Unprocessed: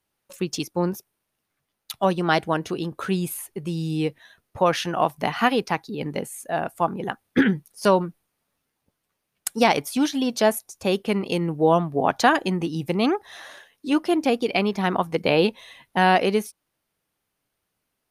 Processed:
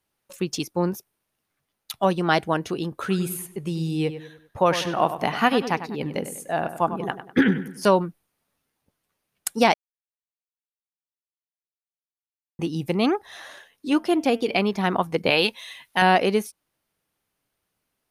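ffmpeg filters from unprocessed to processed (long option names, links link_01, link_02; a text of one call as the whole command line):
ffmpeg -i in.wav -filter_complex "[0:a]asettb=1/sr,asplit=3[link_01][link_02][link_03];[link_01]atrim=end=3.004[link_04];[link_02]atrim=start=3:end=7.89,asetpts=PTS-STARTPTS,afade=type=in:duration=0.004:curve=qsin,afade=type=out:start_time=4.886:duration=0.004:curve=qsin,asplit=2[link_05][link_06];[link_06]adelay=98,lowpass=frequency=3400:poles=1,volume=-11dB,asplit=2[link_07][link_08];[link_08]adelay=98,lowpass=frequency=3400:poles=1,volume=0.42,asplit=2[link_09][link_10];[link_10]adelay=98,lowpass=frequency=3400:poles=1,volume=0.42,asplit=2[link_11][link_12];[link_12]adelay=98,lowpass=frequency=3400:poles=1,volume=0.42[link_13];[link_05][link_07][link_09][link_11][link_13]amix=inputs=5:normalize=0,atrim=end_sample=215649[link_14];[link_03]atrim=start=7.886[link_15];[link_04][link_14]acrossfade=duration=0.004:curve1=hsin:curve2=qsin[link_16];[link_16][link_15]acrossfade=duration=0.004:curve1=qsin:curve2=hsin,asettb=1/sr,asplit=3[link_17][link_18][link_19];[link_17]atrim=end=13.964[link_20];[link_18]atrim=start=13.96:end=14.57,asetpts=PTS-STARTPTS,afade=type=in:duration=0.004:curve=qsin,afade=type=out:start_time=0.606:duration=0.004:curve=qsin,bandreject=frequency=225.6:width_type=h:width=4,bandreject=frequency=451.2:width_type=h:width=4,bandreject=frequency=676.8:width_type=h:width=4,bandreject=frequency=902.4:width_type=h:width=4,bandreject=frequency=1128:width_type=h:width=4,bandreject=frequency=1353.6:width_type=h:width=4,bandreject=frequency=1579.2:width_type=h:width=4,bandreject=frequency=1804.8:width_type=h:width=4,bandreject=frequency=2030.4:width_type=h:width=4,bandreject=frequency=2256:width_type=h:width=4,bandreject=frequency=2481.6:width_type=h:width=4,bandreject=frequency=2707.2:width_type=h:width=4,bandreject=frequency=2932.8:width_type=h:width=4,bandreject=frequency=3158.4:width_type=h:width=4,bandreject=frequency=3384:width_type=h:width=4[link_21];[link_19]atrim=start=14.566[link_22];[link_20][link_21]acrossfade=duration=0.004:curve1=hsin:curve2=qsin[link_23];[link_23][link_22]acrossfade=duration=0.004:curve1=qsin:curve2=hsin,asettb=1/sr,asplit=3[link_24][link_25][link_26];[link_24]atrim=end=15.304[link_27];[link_25]atrim=start=15.3:end=16.02,asetpts=PTS-STARTPTS,afade=type=in:duration=0.004:curve=qsin,afade=type=out:start_time=0.716:duration=0.004:curve=qsin,tiltshelf=frequency=970:gain=-7.5[link_28];[link_26]atrim=start=16.016[link_29];[link_27][link_28]acrossfade=duration=0.004:curve1=hsin:curve2=qsin[link_30];[link_30][link_29]acrossfade=duration=0.004:curve1=qsin:curve2=hsin,asplit=3[link_31][link_32][link_33];[link_31]atrim=end=9.74,asetpts=PTS-STARTPTS,afade=type=out:start_time=9.736:duration=0.004:curve=hsin[link_34];[link_32]atrim=start=9.74:end=12.59,asetpts=PTS-STARTPTS,volume=0[link_35];[link_33]atrim=start=12.59,asetpts=PTS-STARTPTS,afade=type=in:duration=0.004:curve=hsin[link_36];[link_34][link_35][link_36]concat=n=3:v=0:a=1" out.wav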